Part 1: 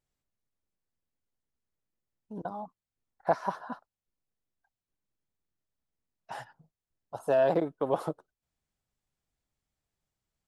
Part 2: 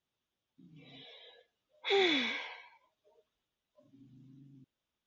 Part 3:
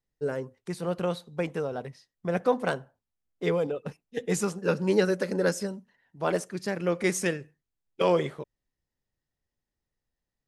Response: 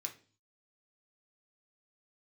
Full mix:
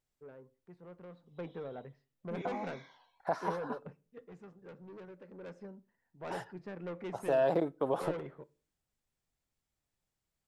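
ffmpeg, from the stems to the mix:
-filter_complex "[0:a]alimiter=limit=-19dB:level=0:latency=1:release=30,volume=-2dB,asplit=3[a][b][c];[b]volume=-14.5dB[d];[1:a]asplit=2[e][f];[f]afreqshift=-0.61[g];[e][g]amix=inputs=2:normalize=1,adelay=500,volume=-14dB[h];[2:a]lowpass=1.5k,asoftclip=type=tanh:threshold=-26dB,afade=t=in:st=1.15:d=0.23:silence=0.316228,afade=t=out:st=3.92:d=0.36:silence=0.281838,afade=t=in:st=5.31:d=0.61:silence=0.316228,asplit=2[i][j];[j]volume=-8.5dB[k];[c]apad=whole_len=245252[l];[h][l]sidechaincompress=threshold=-42dB:ratio=8:attack=46:release=142[m];[3:a]atrim=start_sample=2205[n];[d][k]amix=inputs=2:normalize=0[o];[o][n]afir=irnorm=-1:irlink=0[p];[a][m][i][p]amix=inputs=4:normalize=0"

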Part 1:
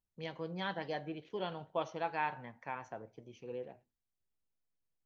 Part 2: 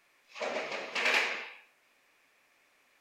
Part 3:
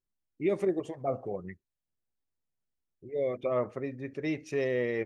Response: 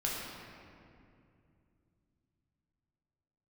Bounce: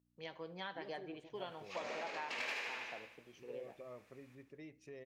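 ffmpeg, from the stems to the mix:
-filter_complex "[0:a]aeval=exprs='val(0)+0.000631*(sin(2*PI*60*n/s)+sin(2*PI*2*60*n/s)/2+sin(2*PI*3*60*n/s)/3+sin(2*PI*4*60*n/s)/4+sin(2*PI*5*60*n/s)/5)':c=same,highpass=f=430:p=1,volume=-2.5dB,asplit=2[a][b];[b]volume=-21.5dB[c];[1:a]adelay=1350,volume=-5dB,asplit=2[d][e];[e]volume=-3.5dB[f];[2:a]acompressor=threshold=-33dB:ratio=2,adelay=350,volume=-18dB[g];[c][f]amix=inputs=2:normalize=0,aecho=0:1:75|150|225|300|375|450|525|600:1|0.56|0.314|0.176|0.0983|0.0551|0.0308|0.0173[h];[a][d][g][h]amix=inputs=4:normalize=0,acompressor=threshold=-40dB:ratio=4"

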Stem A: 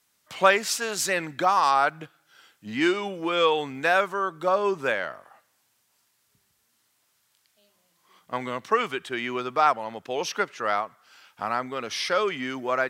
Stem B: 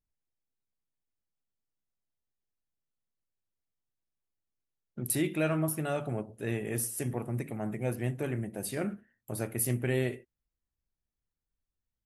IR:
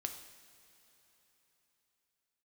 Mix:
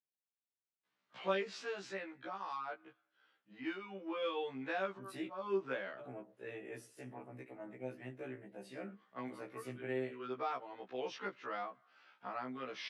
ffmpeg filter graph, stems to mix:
-filter_complex "[0:a]aemphasis=mode=reproduction:type=50fm,adelay=850,volume=0.5dB,afade=t=out:st=1.65:d=0.38:silence=0.421697,afade=t=in:st=3.87:d=0.72:silence=0.446684[a];[1:a]lowshelf=f=160:g=-10.5,volume=-7dB,asplit=3[b][c][d];[b]atrim=end=5.28,asetpts=PTS-STARTPTS,afade=t=out:st=5.276:d=0.004:c=hsin[e];[c]atrim=start=5.28:end=5.99,asetpts=PTS-STARTPTS,volume=0[f];[d]atrim=start=5.99,asetpts=PTS-STARTPTS,afade=t=in:d=0.004:c=hsin[g];[e][f][g]concat=n=3:v=0:a=1,asplit=2[h][i];[i]apad=whole_len=606285[j];[a][j]sidechaincompress=threshold=-58dB:ratio=10:attack=16:release=132[k];[k][h]amix=inputs=2:normalize=0,acrossover=split=410|3000[l][m][n];[m]acompressor=threshold=-41dB:ratio=2.5[o];[l][o][n]amix=inputs=3:normalize=0,highpass=190,lowpass=3.8k,afftfilt=real='re*1.73*eq(mod(b,3),0)':imag='im*1.73*eq(mod(b,3),0)':win_size=2048:overlap=0.75"

